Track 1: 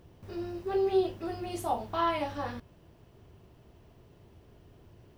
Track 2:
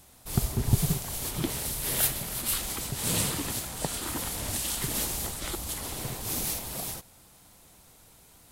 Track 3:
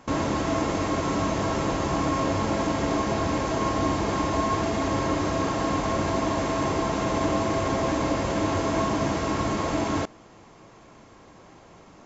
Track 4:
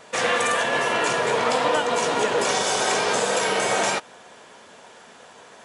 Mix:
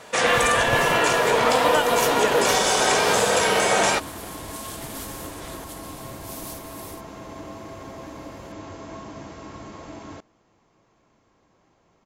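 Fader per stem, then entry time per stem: off, -7.0 dB, -13.5 dB, +2.5 dB; off, 0.00 s, 0.15 s, 0.00 s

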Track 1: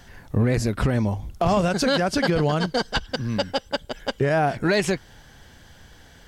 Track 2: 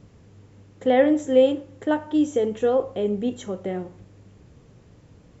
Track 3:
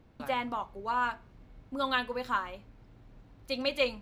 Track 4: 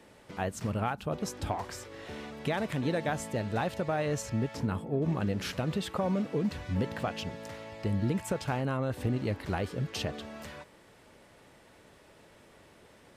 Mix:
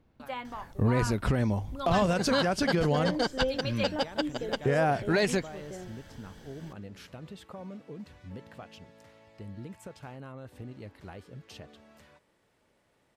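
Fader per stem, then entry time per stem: -5.0, -14.5, -6.0, -13.0 dB; 0.45, 2.05, 0.00, 1.55 s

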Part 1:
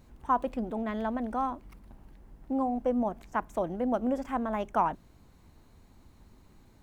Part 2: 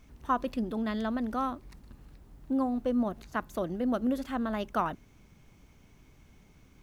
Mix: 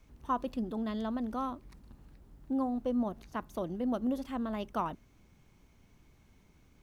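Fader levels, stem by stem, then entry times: -12.0, -5.5 dB; 0.00, 0.00 s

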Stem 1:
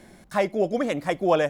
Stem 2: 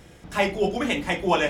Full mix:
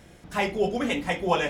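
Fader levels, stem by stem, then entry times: -7.5, -3.5 dB; 0.00, 0.00 s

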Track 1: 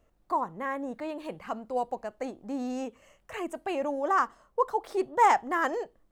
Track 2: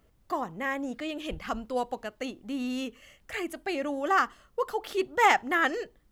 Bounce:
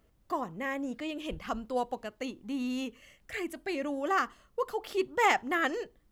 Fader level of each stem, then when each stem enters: -11.0, -3.0 dB; 0.00, 0.00 s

